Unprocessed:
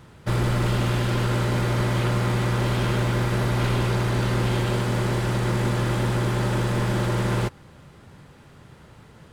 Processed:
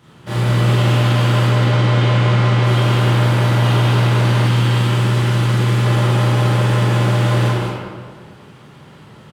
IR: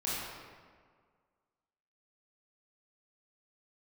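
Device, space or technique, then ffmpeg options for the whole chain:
PA in a hall: -filter_complex "[0:a]asettb=1/sr,asplit=3[link_01][link_02][link_03];[link_01]atrim=end=1.454[link_04];[link_02]atrim=start=1.45:end=2.64,asetpts=PTS-STARTPTS,afade=type=in:duration=0.004:curve=qsin,afade=type=out:start_time=1.186:duration=0.004:curve=qsin,lowpass=6300[link_05];[link_03]atrim=start=2.636[link_06];[link_04][link_05]acrossfade=duration=0.004:curve1=hsin:curve2=qsin[link_07];[link_07][link_06]acrossfade=duration=0.004:curve1=qsin:curve2=hsin,highpass=110,equalizer=frequency=3100:width_type=o:width=0.36:gain=5.5,aecho=1:1:193:0.562[link_08];[1:a]atrim=start_sample=2205[link_09];[link_08][link_09]afir=irnorm=-1:irlink=0,asettb=1/sr,asplit=3[link_10][link_11][link_12];[link_10]atrim=end=4.474[link_13];[link_11]atrim=start=4.47:end=5.86,asetpts=PTS-STARTPTS,afade=type=in:duration=0.004:curve=qsin,afade=type=out:start_time=1.386:duration=0.004:curve=qsin,equalizer=frequency=640:width_type=o:width=1:gain=-6[link_14];[link_12]atrim=start=5.856[link_15];[link_13][link_14]acrossfade=duration=0.004:curve1=hsin:curve2=qsin[link_16];[link_16][link_15]acrossfade=duration=0.004:curve1=qsin:curve2=hsin"

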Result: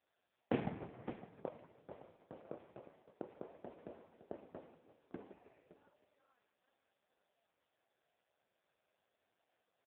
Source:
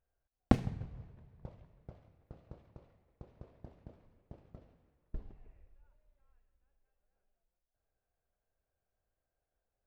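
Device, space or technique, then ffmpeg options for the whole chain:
satellite phone: -filter_complex "[0:a]asettb=1/sr,asplit=3[link_01][link_02][link_03];[link_01]atrim=end=4.624[link_04];[link_02]atrim=start=4.62:end=5.44,asetpts=PTS-STARTPTS,afade=type=in:duration=0.004:curve=qsin,afade=type=out:start_time=0.816:duration=0.004:curve=qsin,highpass=frequency=59:poles=1[link_05];[link_03]atrim=start=5.436[link_06];[link_04][link_05]acrossfade=duration=0.004:curve1=hsin:curve2=qsin[link_07];[link_07][link_06]acrossfade=duration=0.004:curve1=qsin:curve2=hsin,highpass=310,lowpass=3100,aecho=1:1:563:0.178,volume=11dB" -ar 8000 -c:a libopencore_amrnb -b:a 4750

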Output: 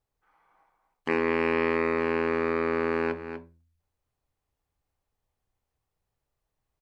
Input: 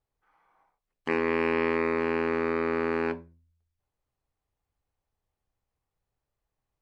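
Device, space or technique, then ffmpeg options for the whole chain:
ducked delay: -filter_complex "[0:a]asplit=3[link_01][link_02][link_03];[link_02]adelay=244,volume=-7dB[link_04];[link_03]apad=whole_len=311195[link_05];[link_04][link_05]sidechaincompress=threshold=-34dB:ratio=8:attack=16:release=369[link_06];[link_01][link_06]amix=inputs=2:normalize=0,volume=1dB"

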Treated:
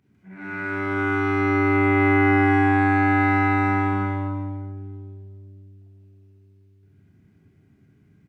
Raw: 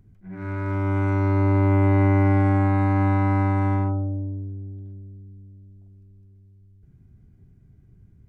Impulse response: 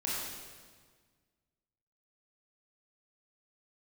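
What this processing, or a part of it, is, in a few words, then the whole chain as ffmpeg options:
stadium PA: -filter_complex "[0:a]highpass=180,equalizer=frequency=2500:width_type=o:width=1.8:gain=8,aecho=1:1:166.2|268.2:0.282|0.562[link_01];[1:a]atrim=start_sample=2205[link_02];[link_01][link_02]afir=irnorm=-1:irlink=0,volume=-3.5dB"

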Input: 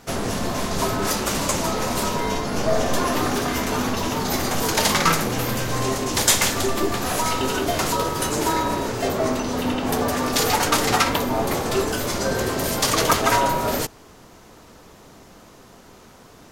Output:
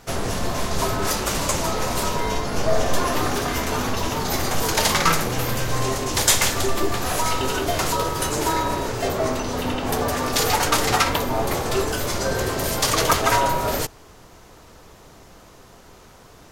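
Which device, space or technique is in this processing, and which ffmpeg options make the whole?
low shelf boost with a cut just above: -af "lowshelf=frequency=86:gain=5.5,equalizer=frequency=230:width_type=o:width=0.88:gain=-5"

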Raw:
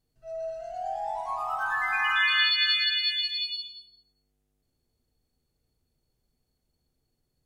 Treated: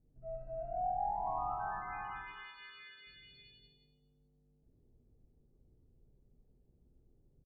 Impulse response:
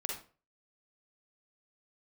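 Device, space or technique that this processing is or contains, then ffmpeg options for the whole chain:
television next door: -filter_complex "[0:a]asettb=1/sr,asplit=3[link_01][link_02][link_03];[link_01]atrim=end=2.324[link_04];[link_02]atrim=start=2.32:end=3.07,asetpts=PTS-STARTPTS,afade=type=in:duration=0.004:curve=qsin,afade=type=out:start_time=0.746:duration=0.004:curve=qsin,highpass=370[link_05];[link_03]atrim=start=3.066[link_06];[link_04][link_05]acrossfade=duration=0.004:curve1=hsin:curve2=qsin[link_07];[link_07][link_06]acrossfade=duration=0.004:curve1=qsin:curve2=hsin,aecho=1:1:411:0.0708,acompressor=threshold=-29dB:ratio=6,lowpass=390[link_08];[1:a]atrim=start_sample=2205[link_09];[link_08][link_09]afir=irnorm=-1:irlink=0,volume=8.5dB"

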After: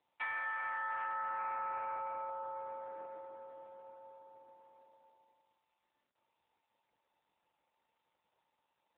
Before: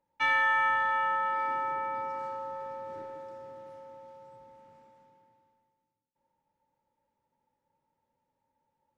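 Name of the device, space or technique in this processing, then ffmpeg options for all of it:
voicemail: -af "highpass=360,lowpass=3100,acompressor=threshold=-30dB:ratio=8,volume=-3.5dB" -ar 8000 -c:a libopencore_amrnb -b:a 7400

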